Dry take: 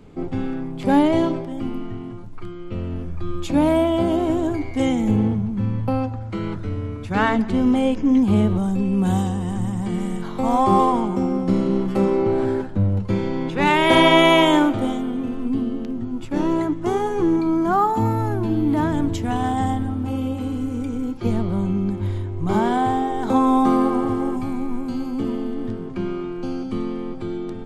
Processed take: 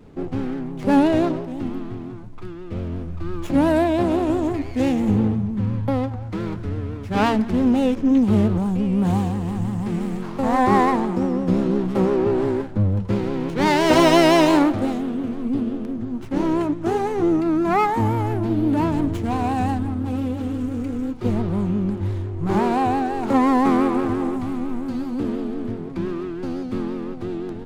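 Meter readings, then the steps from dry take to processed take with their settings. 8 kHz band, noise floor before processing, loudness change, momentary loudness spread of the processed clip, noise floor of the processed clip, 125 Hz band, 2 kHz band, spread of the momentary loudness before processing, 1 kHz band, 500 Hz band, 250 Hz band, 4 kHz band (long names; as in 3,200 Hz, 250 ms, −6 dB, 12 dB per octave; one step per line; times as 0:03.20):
+1.5 dB, −31 dBFS, −0.5 dB, 12 LU, −32 dBFS, 0.0 dB, −2.5 dB, 12 LU, −1.0 dB, 0.0 dB, 0.0 dB, −4.0 dB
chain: pitch vibrato 5.8 Hz 82 cents
windowed peak hold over 9 samples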